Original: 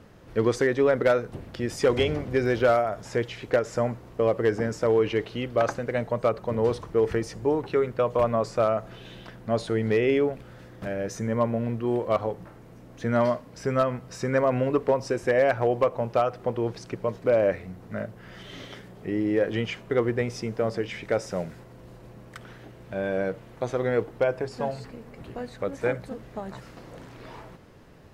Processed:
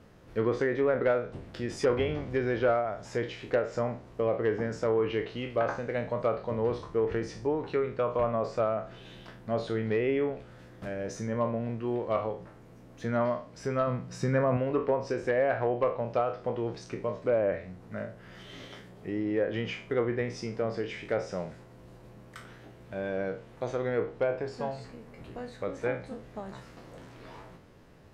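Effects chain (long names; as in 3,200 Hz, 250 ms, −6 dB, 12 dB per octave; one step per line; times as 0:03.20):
peak hold with a decay on every bin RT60 0.37 s
treble cut that deepens with the level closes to 2,200 Hz, closed at −17 dBFS
0:13.87–0:14.57: parametric band 160 Hz +10.5 dB 1 octave
level −5.5 dB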